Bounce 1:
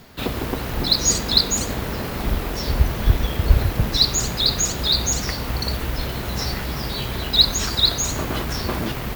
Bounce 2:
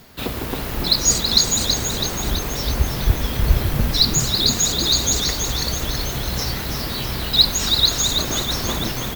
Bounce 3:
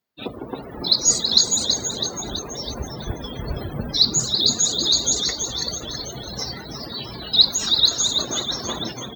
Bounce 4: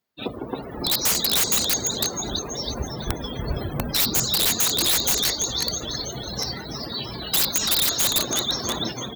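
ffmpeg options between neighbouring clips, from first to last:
-filter_complex "[0:a]highshelf=f=4.9k:g=5.5,asplit=2[a][b];[b]asplit=8[c][d][e][f][g][h][i][j];[c]adelay=327,afreqshift=-95,volume=-6dB[k];[d]adelay=654,afreqshift=-190,volume=-10.3dB[l];[e]adelay=981,afreqshift=-285,volume=-14.6dB[m];[f]adelay=1308,afreqshift=-380,volume=-18.9dB[n];[g]adelay=1635,afreqshift=-475,volume=-23.2dB[o];[h]adelay=1962,afreqshift=-570,volume=-27.5dB[p];[i]adelay=2289,afreqshift=-665,volume=-31.8dB[q];[j]adelay=2616,afreqshift=-760,volume=-36.1dB[r];[k][l][m][n][o][p][q][r]amix=inputs=8:normalize=0[s];[a][s]amix=inputs=2:normalize=0,volume=-1.5dB"
-af "highpass=f=280:p=1,afftdn=nr=35:nf=-28"
-af "aeval=exprs='(mod(5.96*val(0)+1,2)-1)/5.96':c=same,volume=1dB"

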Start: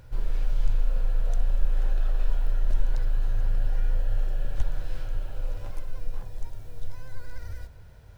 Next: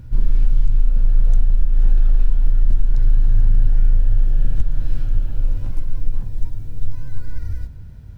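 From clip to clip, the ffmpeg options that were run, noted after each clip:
-af "lowshelf=f=360:t=q:w=1.5:g=11.5,alimiter=limit=-5dB:level=0:latency=1:release=243"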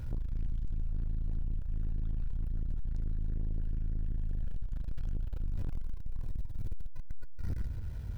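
-af "equalizer=f=190:w=1.8:g=-10.5,acompressor=threshold=-19dB:ratio=16,aeval=exprs='(tanh(44.7*val(0)+0.3)-tanh(0.3))/44.7':c=same,volume=3dB"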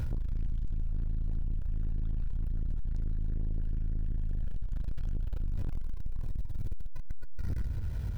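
-af "alimiter=level_in=11.5dB:limit=-24dB:level=0:latency=1:release=230,volume=-11.5dB,volume=9dB"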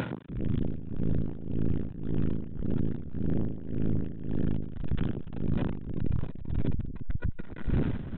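-filter_complex "[0:a]acrossover=split=180[a][b];[a]adelay=290[c];[c][b]amix=inputs=2:normalize=0,aresample=8000,aeval=exprs='0.0631*sin(PI/2*3.55*val(0)/0.0631)':c=same,aresample=44100,tremolo=f=1.8:d=0.79,volume=3dB"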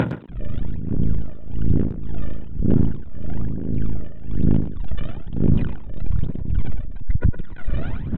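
-filter_complex "[0:a]aphaser=in_gain=1:out_gain=1:delay=1.7:decay=0.78:speed=1.1:type=sinusoidal,asplit=2[a][b];[b]adelay=110,highpass=300,lowpass=3.4k,asoftclip=type=hard:threshold=-18dB,volume=-8dB[c];[a][c]amix=inputs=2:normalize=0"

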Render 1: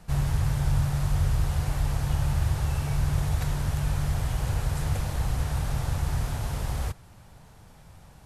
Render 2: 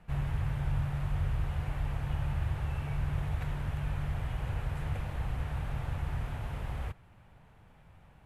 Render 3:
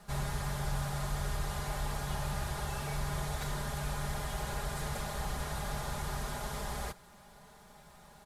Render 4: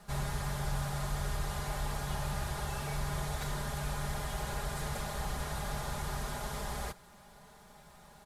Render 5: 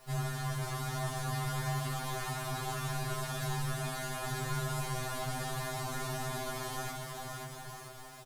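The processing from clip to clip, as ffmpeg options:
-af "highshelf=f=3.7k:t=q:w=1.5:g=-11,volume=-7dB"
-filter_complex "[0:a]aexciter=amount=6.8:drive=9.1:freq=4k,aecho=1:1:4.9:0.74,asplit=2[a][b];[b]highpass=f=720:p=1,volume=14dB,asoftclip=type=tanh:threshold=-18.5dB[c];[a][c]amix=inputs=2:normalize=0,lowpass=f=1.1k:p=1,volume=-6dB"
-af anull
-filter_complex "[0:a]acrusher=bits=9:mix=0:aa=0.000001,asplit=2[a][b];[b]aecho=0:1:530|954|1293|1565|1782:0.631|0.398|0.251|0.158|0.1[c];[a][c]amix=inputs=2:normalize=0,afftfilt=real='re*2.45*eq(mod(b,6),0)':imag='im*2.45*eq(mod(b,6),0)':win_size=2048:overlap=0.75,volume=2dB"

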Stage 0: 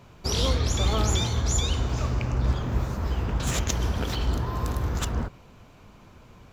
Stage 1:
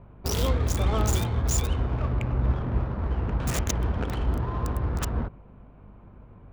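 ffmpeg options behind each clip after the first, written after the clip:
-filter_complex "[0:a]aeval=exprs='val(0)+0.00316*(sin(2*PI*50*n/s)+sin(2*PI*2*50*n/s)/2+sin(2*PI*3*50*n/s)/3+sin(2*PI*4*50*n/s)/4+sin(2*PI*5*50*n/s)/5)':c=same,acrossover=split=4000[a][b];[a]adynamicsmooth=sensitivity=4:basefreq=1.3k[c];[b]acrusher=bits=4:mix=0:aa=0.000001[d];[c][d]amix=inputs=2:normalize=0"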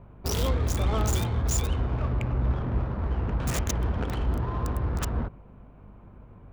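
-af "asoftclip=type=tanh:threshold=-15.5dB"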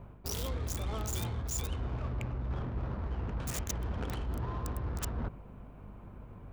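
-af "highshelf=f=4.6k:g=8,areverse,acompressor=threshold=-32dB:ratio=10,areverse"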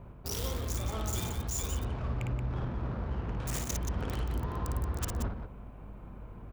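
-af "aecho=1:1:55.39|177.8:0.631|0.447"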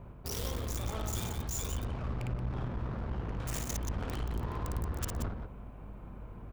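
-af "aeval=exprs='clip(val(0),-1,0.015)':c=same"

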